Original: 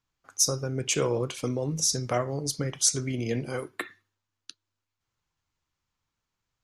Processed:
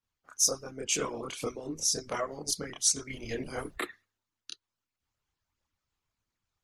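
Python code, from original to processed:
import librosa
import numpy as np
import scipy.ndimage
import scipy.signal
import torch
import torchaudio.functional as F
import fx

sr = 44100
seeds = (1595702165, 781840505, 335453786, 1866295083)

p1 = fx.dmg_noise_colour(x, sr, seeds[0], colour='brown', level_db=-49.0, at=(3.09, 3.74), fade=0.02)
p2 = fx.rider(p1, sr, range_db=4, speed_s=0.5)
p3 = p1 + (p2 * librosa.db_to_amplitude(2.0))
p4 = fx.chorus_voices(p3, sr, voices=6, hz=0.37, base_ms=28, depth_ms=2.5, mix_pct=55)
p5 = fx.hpss(p4, sr, part='harmonic', gain_db=-17)
y = p5 * librosa.db_to_amplitude(-4.5)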